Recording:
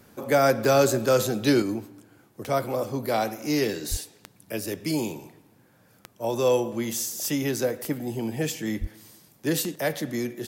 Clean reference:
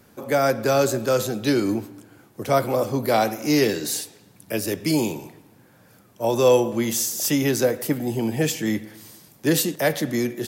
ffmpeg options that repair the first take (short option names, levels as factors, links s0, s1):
-filter_complex "[0:a]adeclick=t=4,asplit=3[s0][s1][s2];[s0]afade=t=out:st=3.9:d=0.02[s3];[s1]highpass=f=140:w=0.5412,highpass=f=140:w=1.3066,afade=t=in:st=3.9:d=0.02,afade=t=out:st=4.02:d=0.02[s4];[s2]afade=t=in:st=4.02:d=0.02[s5];[s3][s4][s5]amix=inputs=3:normalize=0,asplit=3[s6][s7][s8];[s6]afade=t=out:st=8.8:d=0.02[s9];[s7]highpass=f=140:w=0.5412,highpass=f=140:w=1.3066,afade=t=in:st=8.8:d=0.02,afade=t=out:st=8.92:d=0.02[s10];[s8]afade=t=in:st=8.92:d=0.02[s11];[s9][s10][s11]amix=inputs=3:normalize=0,asetnsamples=n=441:p=0,asendcmd='1.62 volume volume 5.5dB',volume=1"